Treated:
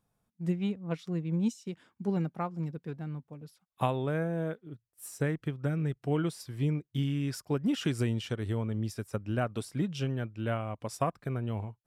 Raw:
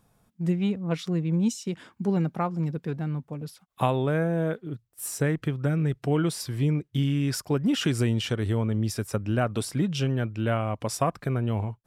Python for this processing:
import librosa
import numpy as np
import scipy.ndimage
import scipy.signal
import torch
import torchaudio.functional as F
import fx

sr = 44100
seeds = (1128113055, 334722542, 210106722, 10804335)

y = fx.upward_expand(x, sr, threshold_db=-39.0, expansion=1.5)
y = y * librosa.db_to_amplitude(-4.0)